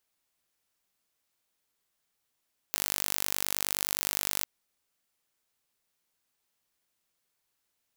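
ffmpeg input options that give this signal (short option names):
-f lavfi -i "aevalsrc='0.75*eq(mod(n,889),0)':d=1.7:s=44100"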